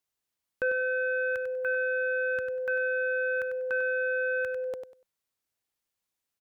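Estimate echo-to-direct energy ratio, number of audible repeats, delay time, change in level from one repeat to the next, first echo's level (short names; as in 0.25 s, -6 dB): -8.0 dB, 3, 97 ms, -13.0 dB, -8.0 dB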